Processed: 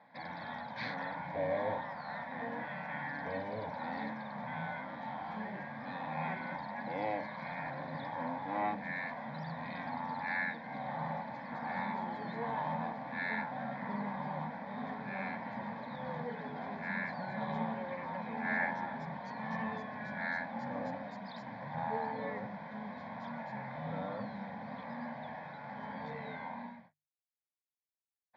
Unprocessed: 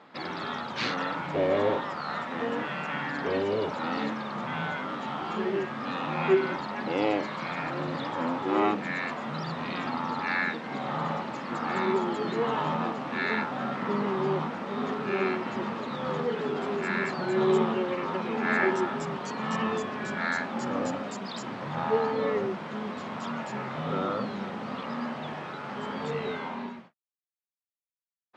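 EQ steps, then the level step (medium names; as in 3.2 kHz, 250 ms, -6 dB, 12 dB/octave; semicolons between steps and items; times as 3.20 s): low-pass 2.7 kHz 12 dB/octave; hum notches 50/100/150 Hz; static phaser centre 1.9 kHz, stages 8; -4.5 dB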